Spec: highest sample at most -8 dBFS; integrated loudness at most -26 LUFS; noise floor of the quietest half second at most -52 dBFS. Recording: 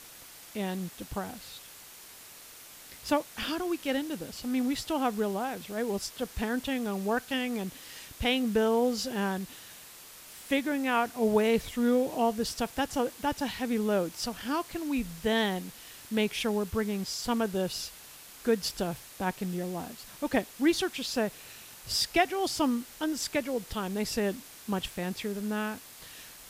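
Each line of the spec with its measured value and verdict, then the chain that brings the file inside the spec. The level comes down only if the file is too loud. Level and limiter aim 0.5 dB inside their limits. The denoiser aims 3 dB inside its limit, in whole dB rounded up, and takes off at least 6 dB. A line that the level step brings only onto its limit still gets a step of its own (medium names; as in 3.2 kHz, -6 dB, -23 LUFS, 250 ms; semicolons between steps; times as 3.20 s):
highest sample -11.5 dBFS: pass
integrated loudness -30.5 LUFS: pass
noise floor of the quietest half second -50 dBFS: fail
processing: noise reduction 6 dB, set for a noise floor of -50 dBFS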